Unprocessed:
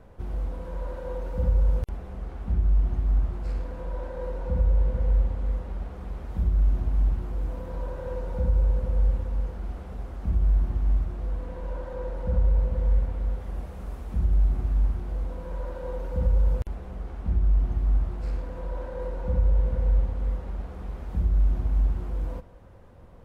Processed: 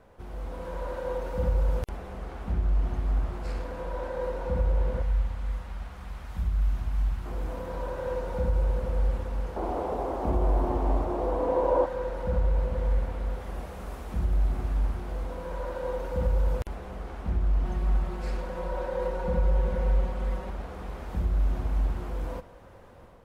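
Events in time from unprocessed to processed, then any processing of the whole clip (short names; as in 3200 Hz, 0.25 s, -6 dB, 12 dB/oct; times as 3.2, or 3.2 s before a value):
5.02–7.26 bell 410 Hz -13 dB 1.8 oct
9.56–11.86 band shelf 530 Hz +13.5 dB 2.3 oct
17.65–20.5 comb 5.4 ms
whole clip: low shelf 270 Hz -10 dB; AGC gain up to 6 dB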